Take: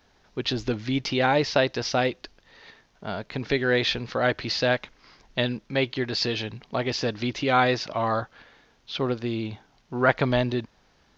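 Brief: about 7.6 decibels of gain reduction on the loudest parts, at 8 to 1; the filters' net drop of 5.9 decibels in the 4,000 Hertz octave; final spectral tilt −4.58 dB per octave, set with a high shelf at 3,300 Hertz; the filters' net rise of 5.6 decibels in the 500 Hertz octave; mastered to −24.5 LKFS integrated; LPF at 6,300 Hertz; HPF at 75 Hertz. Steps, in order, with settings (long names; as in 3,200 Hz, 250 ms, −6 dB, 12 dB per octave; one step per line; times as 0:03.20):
high-pass filter 75 Hz
low-pass filter 6,300 Hz
parametric band 500 Hz +7 dB
high-shelf EQ 3,300 Hz −4.5 dB
parametric band 4,000 Hz −3.5 dB
downward compressor 8 to 1, threshold −20 dBFS
level +3 dB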